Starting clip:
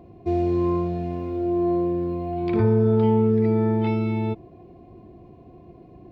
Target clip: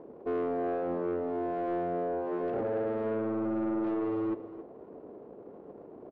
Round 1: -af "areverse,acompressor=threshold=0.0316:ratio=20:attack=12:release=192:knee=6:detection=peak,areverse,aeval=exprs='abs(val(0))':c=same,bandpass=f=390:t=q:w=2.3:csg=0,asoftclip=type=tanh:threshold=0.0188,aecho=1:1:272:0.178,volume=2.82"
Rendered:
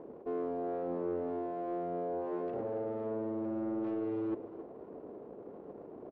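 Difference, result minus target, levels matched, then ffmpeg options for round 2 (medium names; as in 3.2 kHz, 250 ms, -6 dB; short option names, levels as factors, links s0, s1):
compression: peak gain reduction +7 dB
-af "areverse,acompressor=threshold=0.075:ratio=20:attack=12:release=192:knee=6:detection=peak,areverse,aeval=exprs='abs(val(0))':c=same,bandpass=f=390:t=q:w=2.3:csg=0,asoftclip=type=tanh:threshold=0.0188,aecho=1:1:272:0.178,volume=2.82"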